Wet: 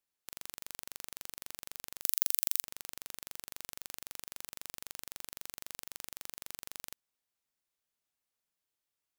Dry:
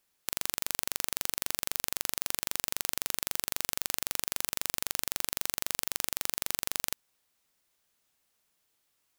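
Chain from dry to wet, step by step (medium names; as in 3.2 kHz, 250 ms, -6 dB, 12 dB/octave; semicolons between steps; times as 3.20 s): 2.02–2.64 s: tilt EQ +4.5 dB/octave; trim -13 dB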